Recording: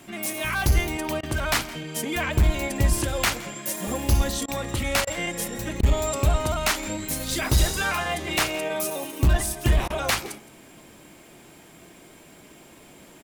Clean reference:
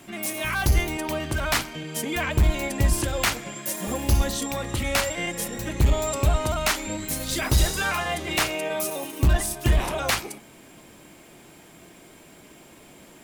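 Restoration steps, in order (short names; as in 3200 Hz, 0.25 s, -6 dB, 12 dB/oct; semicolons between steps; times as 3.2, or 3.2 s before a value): interpolate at 1.21/4.46/5.05/5.81/9.88, 20 ms; inverse comb 0.167 s -19.5 dB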